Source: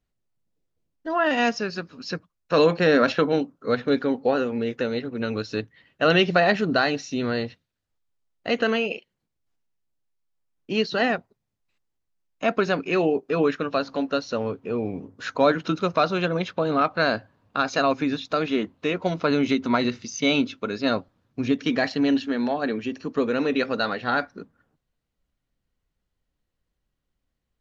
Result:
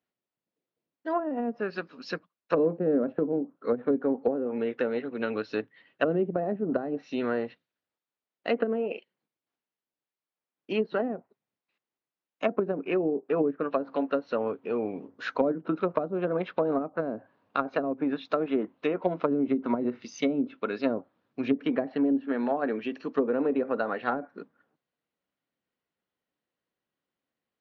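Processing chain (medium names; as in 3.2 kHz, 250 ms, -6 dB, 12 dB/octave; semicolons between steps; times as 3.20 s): Chebyshev shaper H 2 -8 dB, 4 -17 dB, 5 -44 dB, 7 -32 dB, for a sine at -5 dBFS; band-pass 260–3700 Hz; low-pass that closes with the level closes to 360 Hz, closed at -19 dBFS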